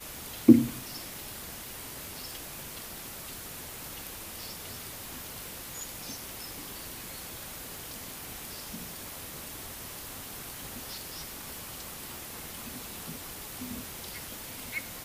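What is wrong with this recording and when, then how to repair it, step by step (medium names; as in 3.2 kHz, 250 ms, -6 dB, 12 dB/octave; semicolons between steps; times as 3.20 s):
crackle 57 per s -41 dBFS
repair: de-click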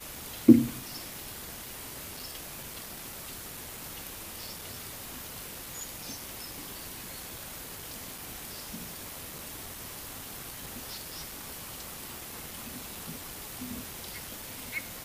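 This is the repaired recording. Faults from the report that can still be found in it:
nothing left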